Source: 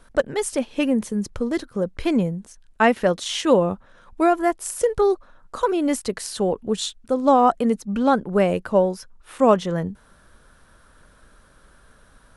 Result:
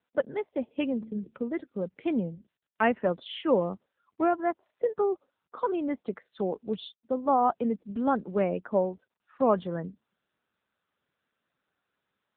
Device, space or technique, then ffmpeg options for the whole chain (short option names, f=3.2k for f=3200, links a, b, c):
mobile call with aggressive noise cancelling: -filter_complex "[0:a]asettb=1/sr,asplit=3[a][b][c];[a]atrim=end=0.974[d];[b]atrim=start=0.97:end=1.38,asetpts=PTS-STARTPTS,afade=t=in:d=0.004:c=qsin,afade=t=out:st=0.406:d=0.004:c=qsin,bandreject=f=73.95:t=h:w=4,bandreject=f=147.9:t=h:w=4,bandreject=f=221.85:t=h:w=4,bandreject=f=295.8:t=h:w=4,bandreject=f=369.75:t=h:w=4,bandreject=f=443.7:t=h:w=4,bandreject=f=517.65:t=h:w=4,bandreject=f=591.6:t=h:w=4,bandreject=f=665.55:t=h:w=4,bandreject=f=739.5:t=h:w=4,bandreject=f=813.45:t=h:w=4,bandreject=f=887.4:t=h:w=4[e];[c]atrim=start=1.376[f];[d][e]acrossfade=d=0.004:c1=hsin:c2=qsin[g];[g][f]acrossfade=d=0.004:c1=qsin:c2=hsin,adynamicequalizer=threshold=0.00501:dfrequency=3800:dqfactor=2:tfrequency=3800:tqfactor=2:attack=5:release=100:ratio=0.375:range=3:mode=cutabove:tftype=bell,highpass=f=150:w=0.5412,highpass=f=150:w=1.3066,afftdn=nr=21:nf=-39,volume=-7dB" -ar 8000 -c:a libopencore_amrnb -b:a 7950